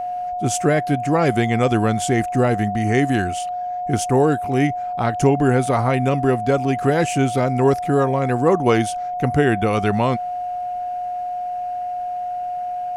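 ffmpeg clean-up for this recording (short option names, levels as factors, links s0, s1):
-af "bandreject=f=720:w=30"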